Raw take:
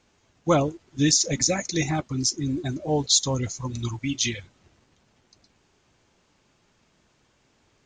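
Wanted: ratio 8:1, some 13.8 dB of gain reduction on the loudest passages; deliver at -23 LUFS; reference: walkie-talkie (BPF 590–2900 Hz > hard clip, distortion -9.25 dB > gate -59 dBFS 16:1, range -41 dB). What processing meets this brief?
compressor 8:1, threshold -30 dBFS; BPF 590–2900 Hz; hard clip -39 dBFS; gate -59 dBFS 16:1, range -41 dB; gain +22 dB

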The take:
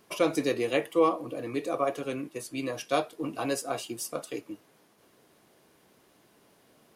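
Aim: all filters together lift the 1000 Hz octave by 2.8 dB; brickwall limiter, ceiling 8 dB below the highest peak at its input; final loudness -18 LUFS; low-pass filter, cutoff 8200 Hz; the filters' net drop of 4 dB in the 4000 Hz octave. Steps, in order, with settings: LPF 8200 Hz; bell 1000 Hz +4 dB; bell 4000 Hz -5.5 dB; gain +14.5 dB; limiter -4.5 dBFS

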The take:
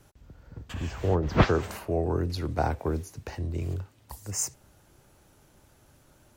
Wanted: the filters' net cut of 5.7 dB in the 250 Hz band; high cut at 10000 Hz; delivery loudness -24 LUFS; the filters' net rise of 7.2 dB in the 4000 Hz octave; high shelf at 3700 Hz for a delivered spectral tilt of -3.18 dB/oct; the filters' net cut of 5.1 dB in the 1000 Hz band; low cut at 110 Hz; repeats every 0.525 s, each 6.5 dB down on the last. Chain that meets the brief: HPF 110 Hz; LPF 10000 Hz; bell 250 Hz -8 dB; bell 1000 Hz -7.5 dB; high shelf 3700 Hz +7.5 dB; bell 4000 Hz +4.5 dB; feedback echo 0.525 s, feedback 47%, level -6.5 dB; gain +6.5 dB

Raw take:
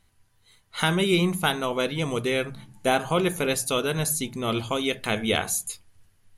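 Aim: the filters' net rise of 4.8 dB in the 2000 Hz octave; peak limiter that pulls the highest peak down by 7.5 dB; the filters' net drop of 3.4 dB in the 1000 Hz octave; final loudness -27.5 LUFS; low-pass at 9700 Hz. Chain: LPF 9700 Hz; bell 1000 Hz -7.5 dB; bell 2000 Hz +8.5 dB; gain -1.5 dB; limiter -15 dBFS

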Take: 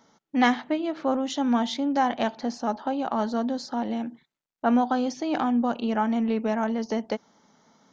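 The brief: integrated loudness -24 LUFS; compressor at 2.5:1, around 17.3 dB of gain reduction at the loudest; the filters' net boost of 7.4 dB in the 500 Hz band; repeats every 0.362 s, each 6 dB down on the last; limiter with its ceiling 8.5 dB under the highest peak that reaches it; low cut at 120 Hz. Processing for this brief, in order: HPF 120 Hz; bell 500 Hz +9 dB; compressor 2.5:1, threshold -41 dBFS; limiter -30.5 dBFS; feedback echo 0.362 s, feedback 50%, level -6 dB; gain +15 dB

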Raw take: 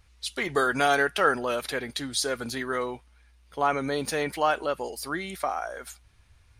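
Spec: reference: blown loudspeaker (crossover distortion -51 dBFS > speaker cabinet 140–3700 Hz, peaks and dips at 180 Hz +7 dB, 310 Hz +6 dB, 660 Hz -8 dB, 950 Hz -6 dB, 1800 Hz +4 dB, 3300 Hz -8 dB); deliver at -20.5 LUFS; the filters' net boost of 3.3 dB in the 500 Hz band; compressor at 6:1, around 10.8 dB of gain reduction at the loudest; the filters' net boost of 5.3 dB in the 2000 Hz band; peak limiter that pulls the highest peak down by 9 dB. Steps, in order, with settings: bell 500 Hz +5.5 dB; bell 2000 Hz +5 dB; compressor 6:1, threshold -26 dBFS; limiter -21 dBFS; crossover distortion -51 dBFS; speaker cabinet 140–3700 Hz, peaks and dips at 180 Hz +7 dB, 310 Hz +6 dB, 660 Hz -8 dB, 950 Hz -6 dB, 1800 Hz +4 dB, 3300 Hz -8 dB; gain +13 dB

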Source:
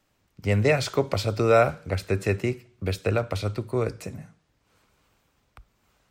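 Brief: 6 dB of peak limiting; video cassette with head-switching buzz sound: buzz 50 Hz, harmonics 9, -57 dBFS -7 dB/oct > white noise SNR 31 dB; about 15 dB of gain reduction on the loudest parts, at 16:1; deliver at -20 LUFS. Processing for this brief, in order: compressor 16:1, threshold -28 dBFS; limiter -23.5 dBFS; buzz 50 Hz, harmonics 9, -57 dBFS -7 dB/oct; white noise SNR 31 dB; gain +16.5 dB

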